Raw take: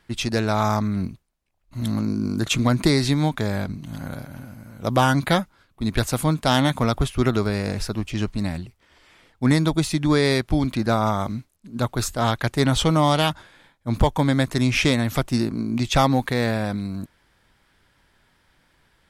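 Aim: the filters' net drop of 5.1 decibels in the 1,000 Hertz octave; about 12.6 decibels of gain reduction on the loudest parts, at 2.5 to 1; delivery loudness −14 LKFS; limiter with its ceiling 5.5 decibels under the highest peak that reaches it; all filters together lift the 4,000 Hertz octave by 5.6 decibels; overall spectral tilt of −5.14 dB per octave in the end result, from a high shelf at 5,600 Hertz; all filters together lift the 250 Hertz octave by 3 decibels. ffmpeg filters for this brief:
ffmpeg -i in.wav -af "equalizer=frequency=250:width_type=o:gain=4,equalizer=frequency=1000:width_type=o:gain=-7.5,equalizer=frequency=4000:width_type=o:gain=9,highshelf=frequency=5600:gain=-5,acompressor=threshold=-32dB:ratio=2.5,volume=19dB,alimiter=limit=-1dB:level=0:latency=1" out.wav

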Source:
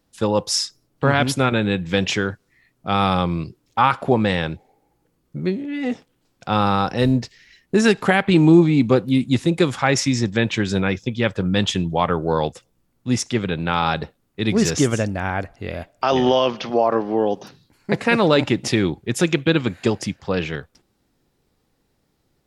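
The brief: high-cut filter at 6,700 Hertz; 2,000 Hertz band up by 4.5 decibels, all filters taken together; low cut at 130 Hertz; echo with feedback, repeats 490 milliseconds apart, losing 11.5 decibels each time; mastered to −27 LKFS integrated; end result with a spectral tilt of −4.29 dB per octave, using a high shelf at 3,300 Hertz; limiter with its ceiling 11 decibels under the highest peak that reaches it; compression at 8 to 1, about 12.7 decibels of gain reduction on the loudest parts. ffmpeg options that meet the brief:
ffmpeg -i in.wav -af "highpass=130,lowpass=6700,equalizer=frequency=2000:width_type=o:gain=3.5,highshelf=frequency=3300:gain=7.5,acompressor=threshold=-22dB:ratio=8,alimiter=limit=-18.5dB:level=0:latency=1,aecho=1:1:490|980|1470:0.266|0.0718|0.0194,volume=3dB" out.wav

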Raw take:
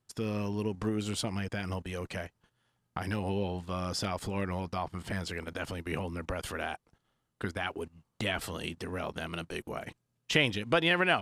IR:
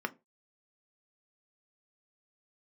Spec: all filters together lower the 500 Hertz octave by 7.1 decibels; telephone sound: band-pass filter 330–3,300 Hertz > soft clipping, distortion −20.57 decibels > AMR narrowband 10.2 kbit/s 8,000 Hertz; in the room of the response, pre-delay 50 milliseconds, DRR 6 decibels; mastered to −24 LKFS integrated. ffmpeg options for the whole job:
-filter_complex "[0:a]equalizer=frequency=500:width_type=o:gain=-8,asplit=2[link_01][link_02];[1:a]atrim=start_sample=2205,adelay=50[link_03];[link_02][link_03]afir=irnorm=-1:irlink=0,volume=-11dB[link_04];[link_01][link_04]amix=inputs=2:normalize=0,highpass=330,lowpass=3300,asoftclip=threshold=-16dB,volume=14.5dB" -ar 8000 -c:a libopencore_amrnb -b:a 10200

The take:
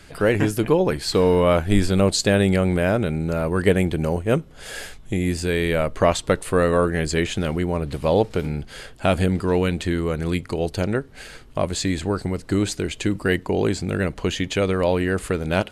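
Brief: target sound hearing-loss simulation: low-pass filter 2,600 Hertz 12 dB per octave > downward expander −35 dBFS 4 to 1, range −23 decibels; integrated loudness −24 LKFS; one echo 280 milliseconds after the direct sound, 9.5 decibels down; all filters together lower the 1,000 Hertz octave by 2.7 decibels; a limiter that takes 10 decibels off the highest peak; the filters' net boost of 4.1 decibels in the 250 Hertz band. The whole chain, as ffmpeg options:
ffmpeg -i in.wav -af "equalizer=frequency=250:width_type=o:gain=6,equalizer=frequency=1000:width_type=o:gain=-4,alimiter=limit=-11.5dB:level=0:latency=1,lowpass=2600,aecho=1:1:280:0.335,agate=range=-23dB:threshold=-35dB:ratio=4,volume=-1.5dB" out.wav

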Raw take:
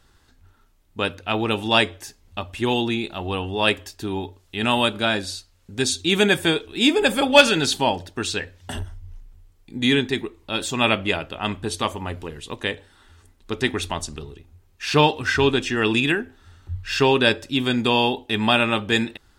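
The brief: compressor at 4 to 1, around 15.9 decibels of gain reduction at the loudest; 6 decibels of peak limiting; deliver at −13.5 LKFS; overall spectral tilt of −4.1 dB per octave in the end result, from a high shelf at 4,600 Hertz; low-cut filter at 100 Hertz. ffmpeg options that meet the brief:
ffmpeg -i in.wav -af "highpass=100,highshelf=frequency=4600:gain=-4.5,acompressor=threshold=-27dB:ratio=4,volume=19dB,alimiter=limit=0dB:level=0:latency=1" out.wav

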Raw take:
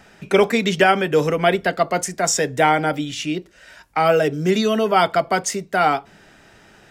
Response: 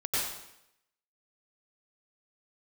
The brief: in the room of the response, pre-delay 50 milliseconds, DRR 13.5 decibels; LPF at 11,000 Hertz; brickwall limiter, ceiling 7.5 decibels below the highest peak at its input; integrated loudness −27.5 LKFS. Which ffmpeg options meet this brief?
-filter_complex "[0:a]lowpass=11000,alimiter=limit=-11dB:level=0:latency=1,asplit=2[link_01][link_02];[1:a]atrim=start_sample=2205,adelay=50[link_03];[link_02][link_03]afir=irnorm=-1:irlink=0,volume=-21.5dB[link_04];[link_01][link_04]amix=inputs=2:normalize=0,volume=-6dB"

